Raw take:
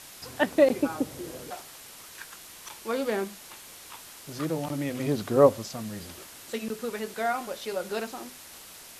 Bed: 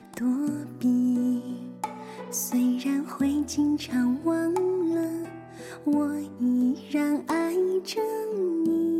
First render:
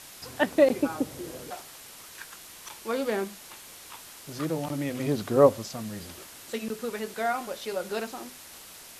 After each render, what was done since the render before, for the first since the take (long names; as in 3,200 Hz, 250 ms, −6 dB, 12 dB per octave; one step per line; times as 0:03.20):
no processing that can be heard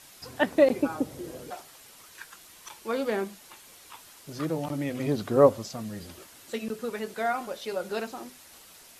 broadband denoise 6 dB, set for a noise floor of −47 dBFS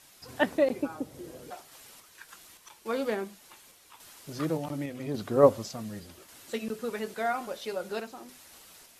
sample-and-hold tremolo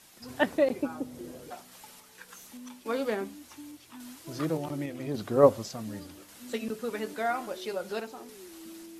mix in bed −22.5 dB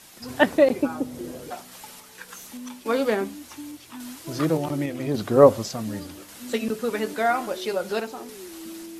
level +7.5 dB
brickwall limiter −1 dBFS, peak gain reduction 3 dB